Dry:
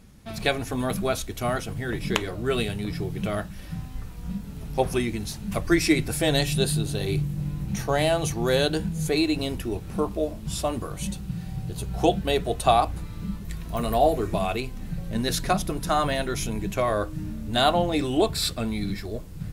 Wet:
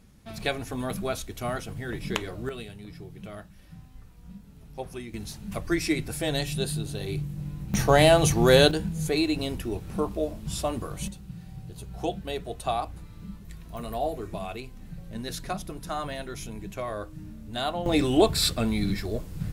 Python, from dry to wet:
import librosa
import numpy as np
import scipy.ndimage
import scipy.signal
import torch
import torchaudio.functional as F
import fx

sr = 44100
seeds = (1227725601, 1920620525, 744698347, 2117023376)

y = fx.gain(x, sr, db=fx.steps((0.0, -4.5), (2.49, -13.0), (5.14, -5.5), (7.74, 5.0), (8.71, -2.0), (11.08, -9.0), (17.86, 2.0)))